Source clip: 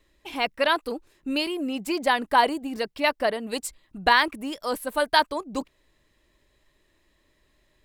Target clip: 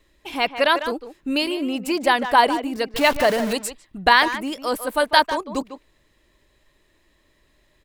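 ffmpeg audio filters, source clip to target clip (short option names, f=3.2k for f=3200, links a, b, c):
-filter_complex "[0:a]asettb=1/sr,asplit=3[a][b][c];[a]atrim=end=2.944[d];[b]atrim=start=2.94:end=3.53,asetpts=PTS-STARTPTS,afade=t=in:d=0.004:c=qsin,afade=t=out:st=0.586:d=0.004:c=qsin,aeval=exprs='val(0)+0.5*0.0473*sgn(val(0))':c=same[e];[c]atrim=start=3.526[f];[d][e]acrossfade=d=0.004:c1=hsin:c2=qsin[g];[g][f]acrossfade=d=0.004:c1=qsin:c2=hsin,asplit=2[h][i];[i]adelay=150,highpass=300,lowpass=3.4k,asoftclip=type=hard:threshold=-14.5dB,volume=-10dB[j];[h][j]amix=inputs=2:normalize=0,volume=4dB"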